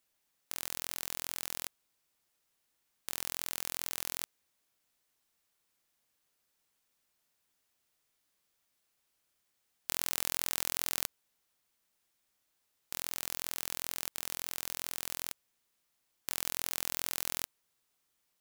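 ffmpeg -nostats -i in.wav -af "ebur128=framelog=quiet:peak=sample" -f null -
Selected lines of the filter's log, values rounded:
Integrated loudness:
  I:         -35.9 LUFS
  Threshold: -46.0 LUFS
Loudness range:
  LRA:         5.2 LU
  Threshold: -58.3 LUFS
  LRA low:   -41.3 LUFS
  LRA high:  -36.1 LUFS
Sample peak:
  Peak:       -5.0 dBFS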